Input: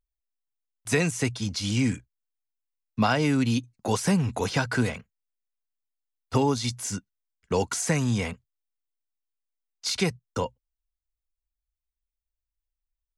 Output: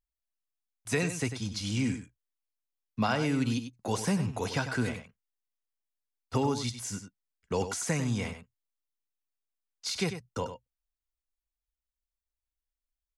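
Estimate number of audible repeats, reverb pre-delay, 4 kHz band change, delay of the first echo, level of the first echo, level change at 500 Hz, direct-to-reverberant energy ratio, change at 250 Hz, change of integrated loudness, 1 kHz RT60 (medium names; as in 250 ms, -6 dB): 1, no reverb, -5.0 dB, 97 ms, -10.0 dB, -5.0 dB, no reverb, -5.0 dB, -5.0 dB, no reverb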